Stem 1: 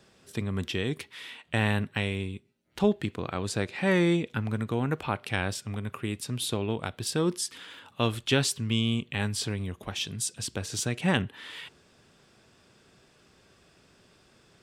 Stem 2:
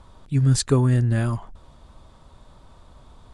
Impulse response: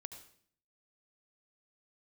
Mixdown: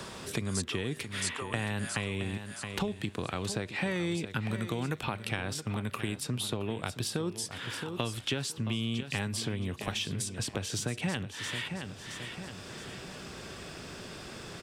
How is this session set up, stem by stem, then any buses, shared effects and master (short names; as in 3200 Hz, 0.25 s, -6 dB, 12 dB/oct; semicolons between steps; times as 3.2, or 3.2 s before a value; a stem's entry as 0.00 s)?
+1.0 dB, 0.00 s, no send, echo send -13 dB, compressor 4:1, threshold -31 dBFS, peak gain reduction 11.5 dB
-5.5 dB, 0.00 s, no send, echo send -5.5 dB, HPF 1000 Hz 12 dB/oct; high shelf 5800 Hz +11 dB; auto duck -17 dB, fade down 1.25 s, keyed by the first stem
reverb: off
echo: feedback echo 0.67 s, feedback 29%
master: three-band squash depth 70%